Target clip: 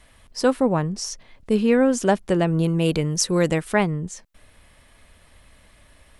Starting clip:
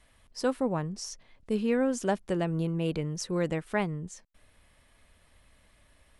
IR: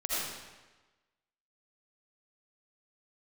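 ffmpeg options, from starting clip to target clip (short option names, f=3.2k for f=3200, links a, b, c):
-filter_complex "[0:a]asettb=1/sr,asplit=3[a][b][c];[a]atrim=end=2.634[d];[b]atrim=start=2.63:end=3.72,asetpts=PTS-STARTPTS,afade=t=in:d=0.004:c=qsin,afade=t=out:st=1.086:d=0.004:c=qsin,highshelf=f=4.6k:g=9.5[e];[c]atrim=start=3.716[f];[d][e]acrossfade=d=0.004:c1=hsin:c2=qsin[g];[g][f]acrossfade=d=0.004:c1=qsin:c2=hsin,volume=9dB"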